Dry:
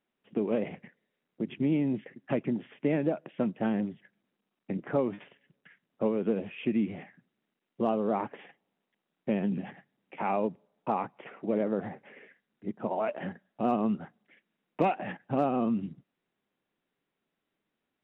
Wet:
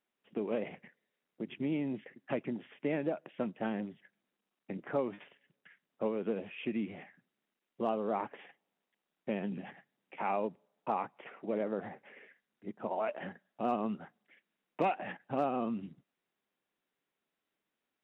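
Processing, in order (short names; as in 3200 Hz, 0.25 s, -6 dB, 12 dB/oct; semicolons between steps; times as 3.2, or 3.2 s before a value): low shelf 330 Hz -8.5 dB; gain -2 dB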